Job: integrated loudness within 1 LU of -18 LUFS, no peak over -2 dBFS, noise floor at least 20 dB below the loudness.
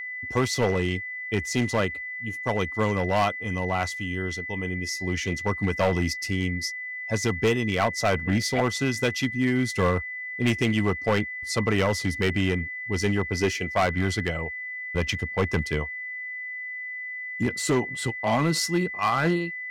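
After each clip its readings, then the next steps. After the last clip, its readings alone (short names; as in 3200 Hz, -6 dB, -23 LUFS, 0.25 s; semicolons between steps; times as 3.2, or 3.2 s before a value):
clipped 1.6%; flat tops at -16.5 dBFS; steady tone 2000 Hz; tone level -32 dBFS; loudness -26.0 LUFS; peak -16.5 dBFS; loudness target -18.0 LUFS
-> clip repair -16.5 dBFS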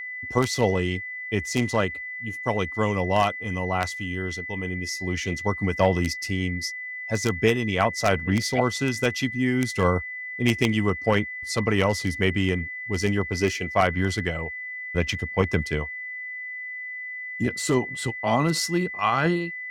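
clipped 0.0%; steady tone 2000 Hz; tone level -32 dBFS
-> notch 2000 Hz, Q 30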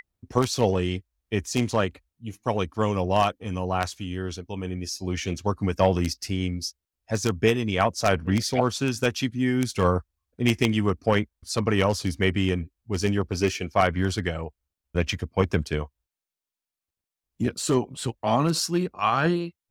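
steady tone none; loudness -25.5 LUFS; peak -7.0 dBFS; loudness target -18.0 LUFS
-> gain +7.5 dB; limiter -2 dBFS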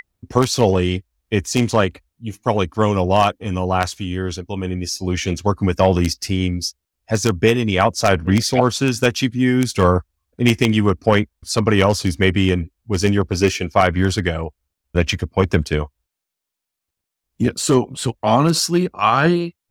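loudness -18.5 LUFS; peak -2.0 dBFS; noise floor -82 dBFS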